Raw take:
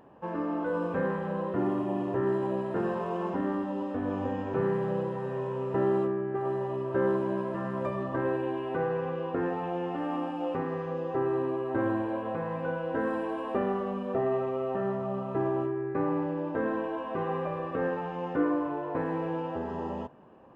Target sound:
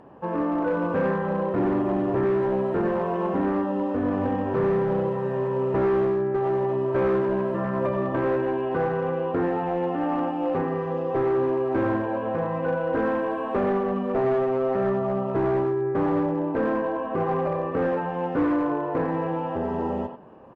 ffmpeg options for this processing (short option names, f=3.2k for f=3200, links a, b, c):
-filter_complex "[0:a]asettb=1/sr,asplit=3[a][b][c];[a]atrim=end=15.434[d];[b]atrim=start=15.43:end=17.9,asetpts=PTS-STARTPTS,afade=t=in:d=0.004:c=qsin,afade=t=out:st=2.466:d=0.004:c=qsin,aemphasis=mode=reproduction:type=75fm[e];[c]atrim=start=17.896[f];[d][e]acrossfade=d=0.004:c1=hsin:c2=qsin[g];[g][f]acrossfade=d=0.004:c1=qsin:c2=hsin,asplit=2[h][i];[i]adelay=90,highpass=300,lowpass=3.4k,asoftclip=type=hard:threshold=-25.5dB,volume=-7dB[j];[h][j]amix=inputs=2:normalize=0,acontrast=42,volume=19.5dB,asoftclip=hard,volume=-19.5dB,acrossover=split=3200[k][l];[l]acompressor=threshold=-59dB:ratio=4:attack=1:release=60[m];[k][m]amix=inputs=2:normalize=0,highshelf=f=2.2k:g=-6,volume=1.5dB" -ar 32000 -c:a libmp3lame -b:a 48k